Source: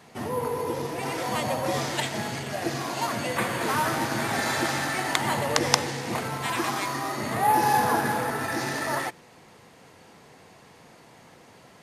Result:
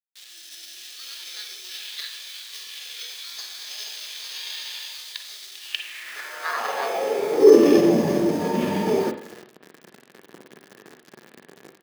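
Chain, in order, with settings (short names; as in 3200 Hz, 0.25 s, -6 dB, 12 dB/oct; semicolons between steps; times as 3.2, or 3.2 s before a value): in parallel at -0.5 dB: compressor, threshold -36 dBFS, peak gain reduction 20.5 dB; on the sum: pitch shift -6.5 st; echo 0.342 s -20.5 dB; AGC gain up to 9 dB; bit-crush 5-bit; formant shift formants -5 st; reverb RT60 0.55 s, pre-delay 41 ms, DRR 6.5 dB; high-pass sweep 3700 Hz -> 190 Hz, 5.59–7.93; small resonant body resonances 400/1700 Hz, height 10 dB, ringing for 20 ms; gain -11.5 dB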